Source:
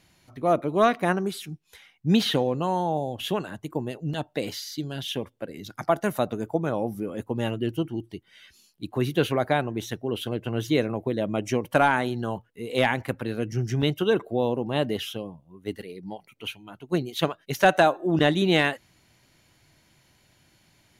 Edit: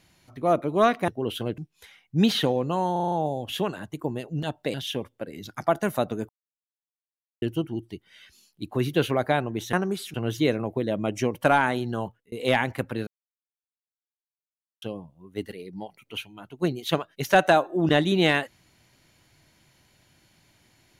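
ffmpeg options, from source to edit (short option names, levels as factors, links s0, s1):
-filter_complex "[0:a]asplit=16[s0][s1][s2][s3][s4][s5][s6][s7][s8][s9][s10][s11][s12][s13][s14][s15];[s0]atrim=end=1.082[s16];[s1]atrim=start=9.938:end=10.442[s17];[s2]atrim=start=1.488:end=2.872[s18];[s3]atrim=start=2.828:end=2.872[s19];[s4]atrim=start=2.828:end=2.872[s20];[s5]atrim=start=2.828:end=2.872[s21];[s6]atrim=start=2.828:end=2.872[s22];[s7]atrim=start=2.828:end=4.452[s23];[s8]atrim=start=4.948:end=6.5,asetpts=PTS-STARTPTS,afade=t=out:st=1.548:d=0.004:c=hsin[s24];[s9]atrim=start=6.5:end=7.63,asetpts=PTS-STARTPTS,volume=0[s25];[s10]atrim=start=7.63:end=9.942,asetpts=PTS-STARTPTS,afade=t=in:d=0.004:c=hsin[s26];[s11]atrim=start=1.078:end=1.492[s27];[s12]atrim=start=10.438:end=12.62,asetpts=PTS-STARTPTS,afade=t=out:st=1.862:d=0.32:c=qsin[s28];[s13]atrim=start=12.62:end=13.37,asetpts=PTS-STARTPTS,afade=t=in:d=0.004:c=hsin,afade=t=out:st=0.746:d=0.004:c=hsin[s29];[s14]atrim=start=13.37:end=15.12,asetpts=PTS-STARTPTS,volume=0[s30];[s15]atrim=start=15.12,asetpts=PTS-STARTPTS,afade=t=in:d=0.004:c=hsin[s31];[s16][s17]acrossfade=d=0.004:c1=hsin:c2=hsin[s32];[s32][s18]acrossfade=d=0.004:c1=hsin:c2=hsin[s33];[s33][s19]acrossfade=d=0.004:c1=hsin:c2=hsin[s34];[s34][s20]acrossfade=d=0.004:c1=hsin:c2=hsin[s35];[s35][s21]acrossfade=d=0.004:c1=hsin:c2=hsin[s36];[s36][s22]acrossfade=d=0.004:c1=hsin:c2=hsin[s37];[s37][s23]acrossfade=d=0.004:c1=hsin:c2=hsin[s38];[s24][s25][s26]concat=n=3:v=0:a=1[s39];[s38][s39]acrossfade=d=0.004:c1=hsin:c2=hsin[s40];[s40][s27]acrossfade=d=0.004:c1=hsin:c2=hsin[s41];[s28][s29][s30][s31]concat=n=4:v=0:a=1[s42];[s41][s42]acrossfade=d=0.004:c1=hsin:c2=hsin"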